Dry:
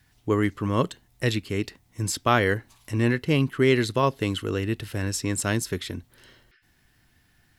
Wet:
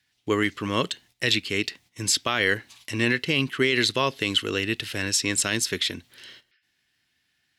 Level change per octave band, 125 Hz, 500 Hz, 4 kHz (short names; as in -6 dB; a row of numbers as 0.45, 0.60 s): -7.0, -2.5, +9.5 dB